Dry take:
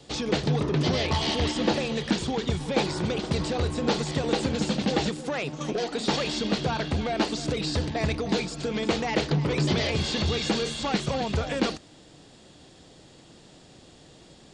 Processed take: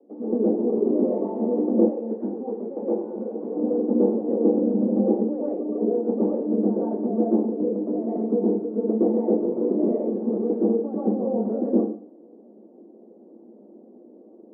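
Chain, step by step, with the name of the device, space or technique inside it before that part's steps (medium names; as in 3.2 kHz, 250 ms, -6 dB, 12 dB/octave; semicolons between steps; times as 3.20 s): next room (low-pass 540 Hz 24 dB/octave; reverberation RT60 0.50 s, pre-delay 110 ms, DRR -7 dB); 1.88–3.56 s: high-pass 600 Hz 6 dB/octave; Chebyshev high-pass 210 Hz, order 6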